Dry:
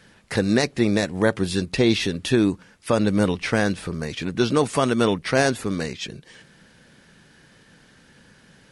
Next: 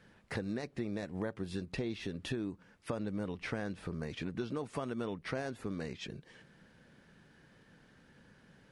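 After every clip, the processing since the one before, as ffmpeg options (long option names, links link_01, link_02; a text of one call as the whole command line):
ffmpeg -i in.wav -af "highshelf=frequency=3000:gain=-10.5,acompressor=threshold=-27dB:ratio=6,volume=-7.5dB" out.wav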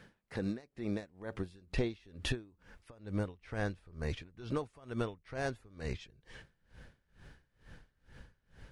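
ffmpeg -i in.wav -af "asubboost=boost=10:cutoff=64,aeval=exprs='val(0)*pow(10,-26*(0.5-0.5*cos(2*PI*2.2*n/s))/20)':channel_layout=same,volume=6dB" out.wav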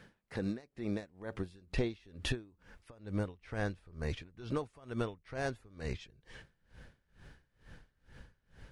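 ffmpeg -i in.wav -af anull out.wav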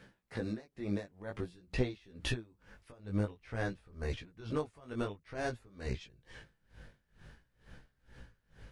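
ffmpeg -i in.wav -af "flanger=delay=15.5:depth=5:speed=0.51,volume=3dB" out.wav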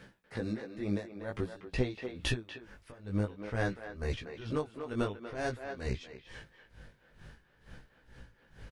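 ffmpeg -i in.wav -filter_complex "[0:a]asplit=2[link_01][link_02];[link_02]adelay=240,highpass=300,lowpass=3400,asoftclip=type=hard:threshold=-25dB,volume=-8dB[link_03];[link_01][link_03]amix=inputs=2:normalize=0,tremolo=f=1.4:d=0.29,volume=4dB" out.wav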